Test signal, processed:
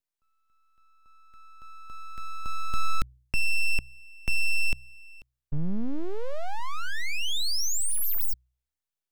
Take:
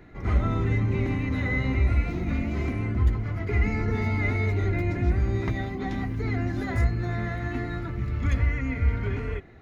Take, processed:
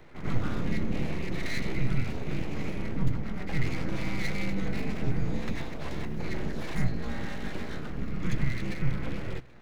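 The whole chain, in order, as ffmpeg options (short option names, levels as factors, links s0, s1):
-filter_complex "[0:a]aeval=exprs='abs(val(0))':c=same,acrossover=split=250|3000[s0][s1][s2];[s1]acompressor=threshold=0.00398:ratio=1.5[s3];[s0][s3][s2]amix=inputs=3:normalize=0,bandreject=f=62.36:t=h:w=4,bandreject=f=124.72:t=h:w=4"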